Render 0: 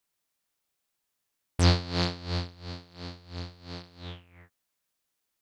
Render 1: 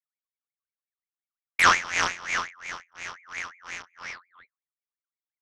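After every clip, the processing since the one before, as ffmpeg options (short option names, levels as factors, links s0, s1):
-filter_complex "[0:a]asplit=2[s0][s1];[s1]adelay=105,volume=0.0562,highshelf=f=4000:g=-2.36[s2];[s0][s2]amix=inputs=2:normalize=0,anlmdn=0.01,aeval=exprs='val(0)*sin(2*PI*1700*n/s+1700*0.35/5.6*sin(2*PI*5.6*n/s))':c=same,volume=1.88"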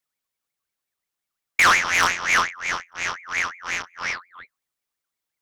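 -filter_complex "[0:a]asplit=2[s0][s1];[s1]alimiter=limit=0.211:level=0:latency=1:release=73,volume=1.41[s2];[s0][s2]amix=inputs=2:normalize=0,asoftclip=type=tanh:threshold=0.178,volume=1.5"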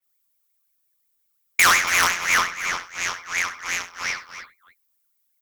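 -filter_complex "[0:a]aemphasis=mode=production:type=50fm,asplit=2[s0][s1];[s1]aecho=0:1:68|96|280:0.2|0.119|0.237[s2];[s0][s2]amix=inputs=2:normalize=0,adynamicequalizer=threshold=0.0282:dfrequency=4100:dqfactor=0.7:tfrequency=4100:tqfactor=0.7:attack=5:release=100:ratio=0.375:range=2:mode=cutabove:tftype=highshelf,volume=0.841"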